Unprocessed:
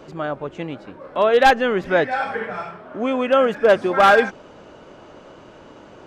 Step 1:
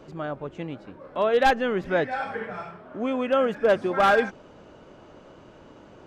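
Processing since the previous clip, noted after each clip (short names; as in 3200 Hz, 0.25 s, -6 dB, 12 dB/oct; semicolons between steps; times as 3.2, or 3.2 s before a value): low shelf 270 Hz +5.5 dB; gain -7 dB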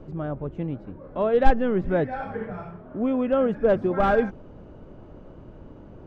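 tilt -4 dB/oct; gain -3.5 dB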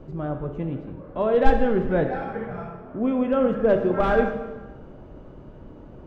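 plate-style reverb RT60 1.2 s, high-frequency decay 0.85×, DRR 4.5 dB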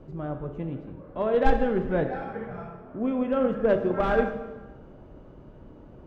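added harmonics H 7 -30 dB, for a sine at -2.5 dBFS; gain -2 dB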